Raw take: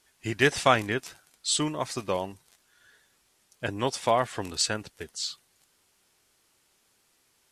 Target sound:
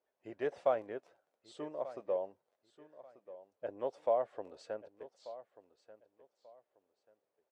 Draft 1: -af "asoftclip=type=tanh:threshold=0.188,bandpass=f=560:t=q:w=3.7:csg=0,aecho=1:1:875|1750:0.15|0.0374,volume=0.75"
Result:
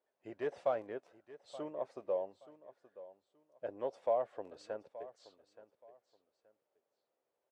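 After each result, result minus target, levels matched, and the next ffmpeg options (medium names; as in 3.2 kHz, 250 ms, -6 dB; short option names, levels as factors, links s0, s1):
saturation: distortion +13 dB; echo 312 ms early
-af "asoftclip=type=tanh:threshold=0.562,bandpass=f=560:t=q:w=3.7:csg=0,aecho=1:1:875|1750:0.15|0.0374,volume=0.75"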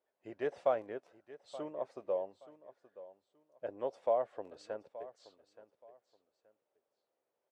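echo 312 ms early
-af "asoftclip=type=tanh:threshold=0.562,bandpass=f=560:t=q:w=3.7:csg=0,aecho=1:1:1187|2374:0.15|0.0374,volume=0.75"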